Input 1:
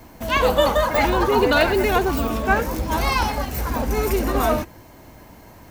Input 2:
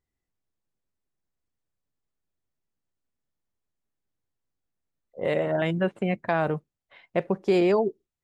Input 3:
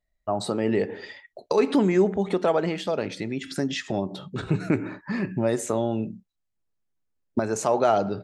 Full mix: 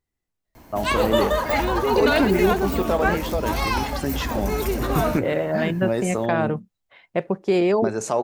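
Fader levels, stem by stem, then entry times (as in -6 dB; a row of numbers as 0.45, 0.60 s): -3.0, +2.0, 0.0 dB; 0.55, 0.00, 0.45 s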